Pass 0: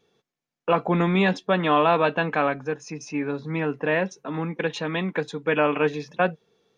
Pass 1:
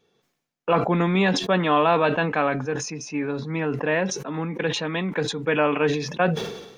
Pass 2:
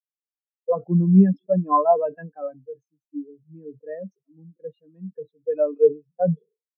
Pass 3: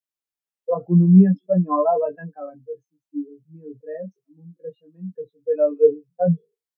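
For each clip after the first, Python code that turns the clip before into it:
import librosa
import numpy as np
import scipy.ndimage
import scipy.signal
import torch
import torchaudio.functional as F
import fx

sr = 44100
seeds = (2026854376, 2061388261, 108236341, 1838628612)

y1 = fx.sustainer(x, sr, db_per_s=59.0)
y2 = fx.spectral_expand(y1, sr, expansion=4.0)
y2 = y2 * librosa.db_to_amplitude(2.5)
y3 = fx.doubler(y2, sr, ms=17.0, db=-3)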